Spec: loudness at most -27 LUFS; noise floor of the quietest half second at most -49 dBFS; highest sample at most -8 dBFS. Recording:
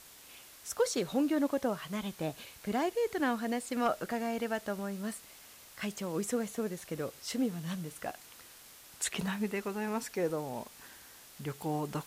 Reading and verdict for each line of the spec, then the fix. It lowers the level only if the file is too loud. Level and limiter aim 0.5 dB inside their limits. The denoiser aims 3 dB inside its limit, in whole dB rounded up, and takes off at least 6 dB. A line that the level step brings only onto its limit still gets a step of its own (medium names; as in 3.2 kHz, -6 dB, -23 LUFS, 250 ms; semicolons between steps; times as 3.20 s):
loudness -35.0 LUFS: pass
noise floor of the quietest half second -54 dBFS: pass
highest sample -20.0 dBFS: pass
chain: none needed